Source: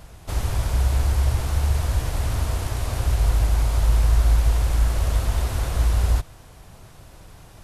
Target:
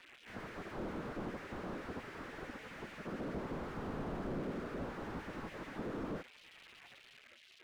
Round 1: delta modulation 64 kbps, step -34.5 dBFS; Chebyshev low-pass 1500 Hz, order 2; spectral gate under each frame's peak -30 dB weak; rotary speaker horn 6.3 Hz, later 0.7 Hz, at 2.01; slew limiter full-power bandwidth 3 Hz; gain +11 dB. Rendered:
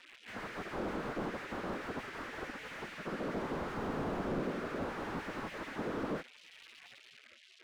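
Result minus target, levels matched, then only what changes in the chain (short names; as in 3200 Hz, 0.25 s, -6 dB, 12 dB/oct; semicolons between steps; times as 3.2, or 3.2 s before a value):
slew limiter: distortion -5 dB
change: slew limiter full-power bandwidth 1.5 Hz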